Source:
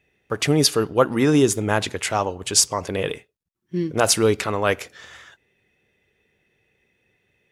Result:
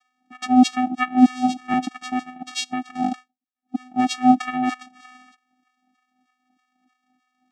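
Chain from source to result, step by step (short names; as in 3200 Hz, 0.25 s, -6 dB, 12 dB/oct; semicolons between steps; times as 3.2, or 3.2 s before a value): LFO high-pass saw down 3.2 Hz 200–2900 Hz; vocoder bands 4, square 252 Hz; 0.73–1.74 three-band squash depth 40%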